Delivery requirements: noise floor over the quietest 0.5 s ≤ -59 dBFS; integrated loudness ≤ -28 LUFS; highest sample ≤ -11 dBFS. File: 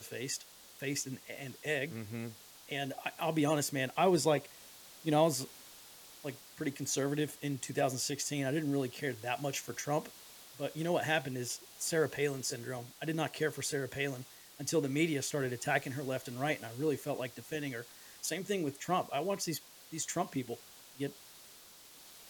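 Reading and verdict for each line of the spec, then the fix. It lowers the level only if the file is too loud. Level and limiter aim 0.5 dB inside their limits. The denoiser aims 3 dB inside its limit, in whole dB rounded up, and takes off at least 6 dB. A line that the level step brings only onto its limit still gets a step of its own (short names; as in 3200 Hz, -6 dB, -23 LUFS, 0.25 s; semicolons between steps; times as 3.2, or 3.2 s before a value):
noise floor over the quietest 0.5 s -56 dBFS: fail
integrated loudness -35.5 LUFS: OK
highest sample -15.0 dBFS: OK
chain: denoiser 6 dB, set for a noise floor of -56 dBFS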